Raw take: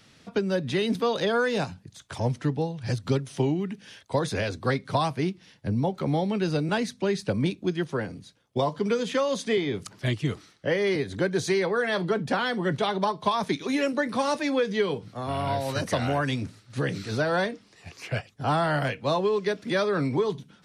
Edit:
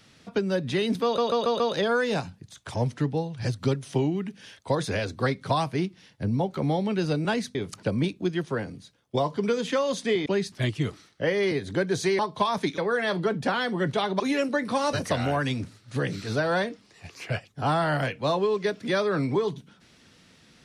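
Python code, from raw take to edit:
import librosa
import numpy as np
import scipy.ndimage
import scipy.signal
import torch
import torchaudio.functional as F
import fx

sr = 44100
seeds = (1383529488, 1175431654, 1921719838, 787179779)

y = fx.edit(x, sr, fx.stutter(start_s=1.04, slice_s=0.14, count=5),
    fx.swap(start_s=6.99, length_s=0.26, other_s=9.68, other_length_s=0.28),
    fx.move(start_s=13.05, length_s=0.59, to_s=11.63),
    fx.cut(start_s=14.37, length_s=1.38), tone=tone)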